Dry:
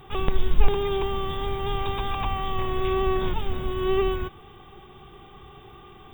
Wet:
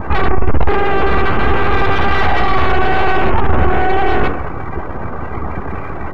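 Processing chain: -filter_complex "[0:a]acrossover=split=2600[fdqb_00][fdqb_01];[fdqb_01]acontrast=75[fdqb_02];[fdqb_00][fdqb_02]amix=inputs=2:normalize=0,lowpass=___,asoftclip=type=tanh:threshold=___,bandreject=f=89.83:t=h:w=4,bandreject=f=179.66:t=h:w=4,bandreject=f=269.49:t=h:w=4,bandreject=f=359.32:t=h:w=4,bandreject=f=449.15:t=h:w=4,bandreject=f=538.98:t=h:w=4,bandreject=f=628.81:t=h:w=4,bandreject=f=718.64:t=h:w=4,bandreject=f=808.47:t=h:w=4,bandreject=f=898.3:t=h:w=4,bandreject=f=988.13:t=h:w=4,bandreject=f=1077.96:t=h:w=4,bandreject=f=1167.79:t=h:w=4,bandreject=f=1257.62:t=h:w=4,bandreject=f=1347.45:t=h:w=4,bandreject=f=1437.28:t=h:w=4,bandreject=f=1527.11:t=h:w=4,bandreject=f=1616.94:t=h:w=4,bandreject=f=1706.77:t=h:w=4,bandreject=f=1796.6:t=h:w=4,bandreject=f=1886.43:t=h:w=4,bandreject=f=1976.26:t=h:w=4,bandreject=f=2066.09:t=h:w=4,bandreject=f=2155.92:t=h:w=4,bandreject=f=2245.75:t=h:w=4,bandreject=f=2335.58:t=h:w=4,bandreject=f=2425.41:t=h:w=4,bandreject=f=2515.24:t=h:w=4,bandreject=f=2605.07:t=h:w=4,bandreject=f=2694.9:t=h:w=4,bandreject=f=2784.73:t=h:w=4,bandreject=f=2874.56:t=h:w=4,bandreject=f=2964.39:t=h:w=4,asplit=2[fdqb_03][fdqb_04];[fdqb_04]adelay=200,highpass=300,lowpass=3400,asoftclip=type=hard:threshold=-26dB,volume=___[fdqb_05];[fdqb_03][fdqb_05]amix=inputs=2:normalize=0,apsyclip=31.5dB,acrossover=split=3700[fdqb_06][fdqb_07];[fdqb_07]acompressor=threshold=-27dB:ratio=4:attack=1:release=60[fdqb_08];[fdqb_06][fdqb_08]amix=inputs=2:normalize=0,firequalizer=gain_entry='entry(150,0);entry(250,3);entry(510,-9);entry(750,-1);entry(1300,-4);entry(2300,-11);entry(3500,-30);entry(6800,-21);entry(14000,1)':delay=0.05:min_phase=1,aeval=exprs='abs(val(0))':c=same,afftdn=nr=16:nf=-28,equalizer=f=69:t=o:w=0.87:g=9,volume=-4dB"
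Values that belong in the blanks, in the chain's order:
5200, -17dB, -15dB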